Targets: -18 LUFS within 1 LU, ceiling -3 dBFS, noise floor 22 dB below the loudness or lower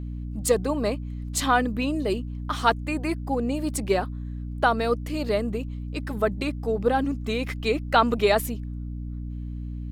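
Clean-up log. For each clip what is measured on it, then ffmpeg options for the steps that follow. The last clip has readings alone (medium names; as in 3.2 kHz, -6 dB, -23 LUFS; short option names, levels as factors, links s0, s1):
hum 60 Hz; highest harmonic 300 Hz; hum level -30 dBFS; loudness -26.0 LUFS; peak level -6.0 dBFS; loudness target -18.0 LUFS
-> -af "bandreject=f=60:t=h:w=6,bandreject=f=120:t=h:w=6,bandreject=f=180:t=h:w=6,bandreject=f=240:t=h:w=6,bandreject=f=300:t=h:w=6"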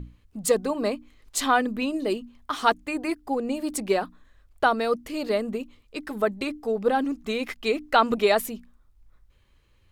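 hum not found; loudness -26.0 LUFS; peak level -6.0 dBFS; loudness target -18.0 LUFS
-> -af "volume=2.51,alimiter=limit=0.708:level=0:latency=1"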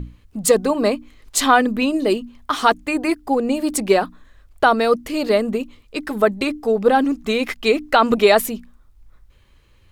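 loudness -18.5 LUFS; peak level -3.0 dBFS; noise floor -53 dBFS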